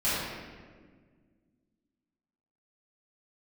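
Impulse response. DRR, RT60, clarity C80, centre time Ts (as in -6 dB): -13.0 dB, 1.6 s, -0.5 dB, 0.115 s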